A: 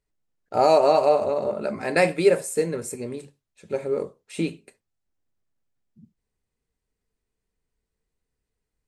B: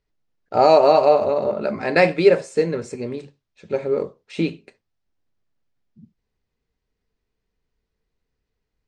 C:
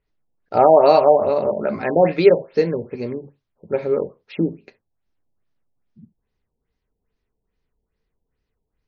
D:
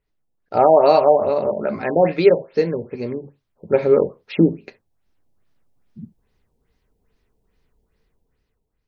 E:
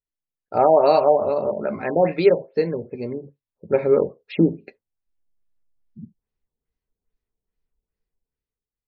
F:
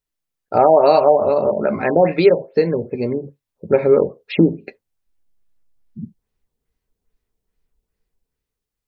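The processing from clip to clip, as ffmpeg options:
-af "lowpass=f=5.7k:w=0.5412,lowpass=f=5.7k:w=1.3066,volume=4dB"
-af "afftfilt=real='re*lt(b*sr/1024,920*pow(6900/920,0.5+0.5*sin(2*PI*2.4*pts/sr)))':imag='im*lt(b*sr/1024,920*pow(6900/920,0.5+0.5*sin(2*PI*2.4*pts/sr)))':win_size=1024:overlap=0.75,volume=1.5dB"
-af "dynaudnorm=f=250:g=7:m=10.5dB,volume=-1dB"
-af "afftdn=nr=17:nf=-42,volume=-2.5dB"
-af "acompressor=threshold=-24dB:ratio=1.5,volume=8dB"

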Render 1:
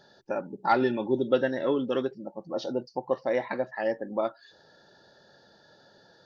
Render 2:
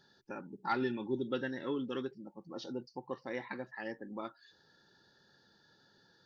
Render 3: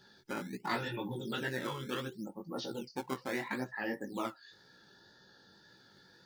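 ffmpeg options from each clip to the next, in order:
-af "equalizer=f=620:w=2.3:g=-14.5,volume=-6.5dB"
-filter_complex "[0:a]afftfilt=real='re*lt(hypot(re,im),0.0891)':imag='im*lt(hypot(re,im),0.0891)':win_size=1024:overlap=0.75,flanger=delay=15.5:depth=6.1:speed=1.9,acrossover=split=610[a][b];[a]acrusher=samples=14:mix=1:aa=0.000001:lfo=1:lforange=22.4:lforate=0.71[c];[c][b]amix=inputs=2:normalize=0,volume=8.5dB"

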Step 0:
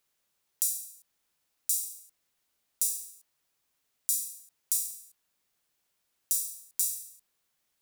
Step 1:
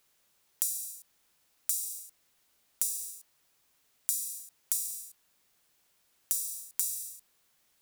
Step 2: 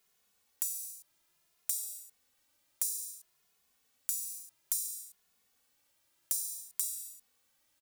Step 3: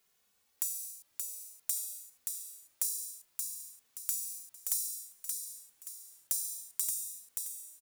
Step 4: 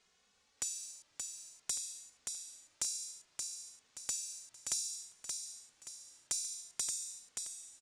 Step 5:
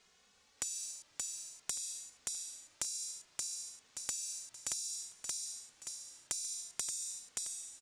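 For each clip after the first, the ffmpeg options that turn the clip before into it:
-af "acompressor=threshold=-34dB:ratio=6,volume=7dB"
-filter_complex "[0:a]asplit=2[a][b];[b]adelay=2.4,afreqshift=0.59[c];[a][c]amix=inputs=2:normalize=1"
-af "aecho=1:1:576|1152|1728|2304|2880:0.596|0.226|0.086|0.0327|0.0124"
-af "lowpass=f=7.2k:w=0.5412,lowpass=f=7.2k:w=1.3066,volume=5dB"
-af "acompressor=threshold=-39dB:ratio=10,volume=4.5dB"

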